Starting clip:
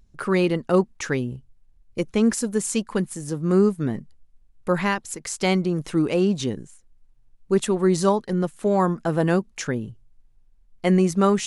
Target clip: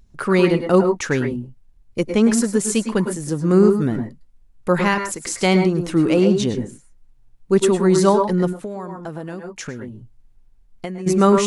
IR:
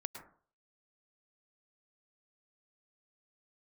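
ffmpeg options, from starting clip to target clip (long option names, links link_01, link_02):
-filter_complex "[1:a]atrim=start_sample=2205,atrim=end_sample=6174[link_01];[0:a][link_01]afir=irnorm=-1:irlink=0,asplit=3[link_02][link_03][link_04];[link_02]afade=type=out:start_time=8.52:duration=0.02[link_05];[link_03]acompressor=threshold=-34dB:ratio=12,afade=type=in:start_time=8.52:duration=0.02,afade=type=out:start_time=11.06:duration=0.02[link_06];[link_04]afade=type=in:start_time=11.06:duration=0.02[link_07];[link_05][link_06][link_07]amix=inputs=3:normalize=0,volume=7dB"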